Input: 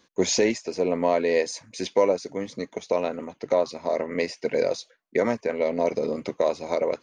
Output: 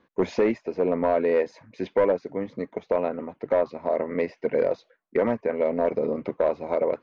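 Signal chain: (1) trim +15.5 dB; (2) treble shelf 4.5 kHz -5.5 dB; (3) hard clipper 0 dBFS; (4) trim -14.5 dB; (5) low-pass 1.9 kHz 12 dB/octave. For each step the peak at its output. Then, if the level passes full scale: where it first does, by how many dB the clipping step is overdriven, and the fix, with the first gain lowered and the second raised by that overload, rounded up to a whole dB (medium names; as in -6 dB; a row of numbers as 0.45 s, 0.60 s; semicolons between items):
+6.5 dBFS, +6.5 dBFS, 0.0 dBFS, -14.5 dBFS, -14.0 dBFS; step 1, 6.5 dB; step 1 +8.5 dB, step 4 -7.5 dB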